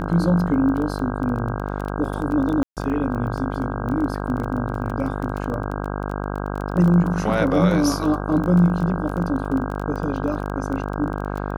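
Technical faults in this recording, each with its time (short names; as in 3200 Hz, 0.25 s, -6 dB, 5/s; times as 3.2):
buzz 50 Hz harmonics 32 -27 dBFS
crackle 15/s -26 dBFS
2.63–2.77 gap 0.138 s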